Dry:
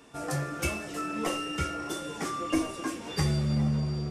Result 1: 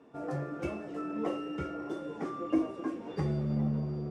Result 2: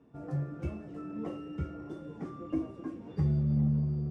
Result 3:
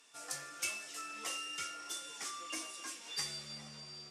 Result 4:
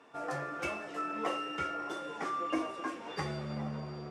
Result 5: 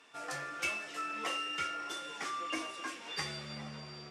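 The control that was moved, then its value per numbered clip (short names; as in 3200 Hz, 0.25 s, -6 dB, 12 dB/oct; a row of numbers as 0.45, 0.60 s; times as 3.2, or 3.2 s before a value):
band-pass, frequency: 360, 130, 6400, 980, 2500 Hz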